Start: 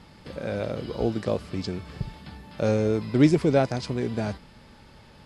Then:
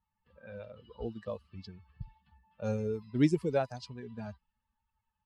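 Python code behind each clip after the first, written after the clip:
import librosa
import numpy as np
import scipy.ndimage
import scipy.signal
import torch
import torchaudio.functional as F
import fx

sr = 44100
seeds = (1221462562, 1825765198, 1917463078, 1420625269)

y = fx.bin_expand(x, sr, power=2.0)
y = fx.env_lowpass(y, sr, base_hz=2000.0, full_db=-24.0)
y = F.gain(torch.from_numpy(y), -6.0).numpy()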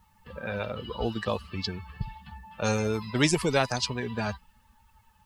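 y = fx.spectral_comp(x, sr, ratio=2.0)
y = F.gain(torch.from_numpy(y), 6.5).numpy()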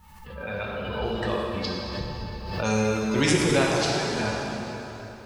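y = fx.rev_plate(x, sr, seeds[0], rt60_s=3.7, hf_ratio=0.8, predelay_ms=0, drr_db=-4.0)
y = fx.pre_swell(y, sr, db_per_s=46.0)
y = F.gain(torch.from_numpy(y), -2.0).numpy()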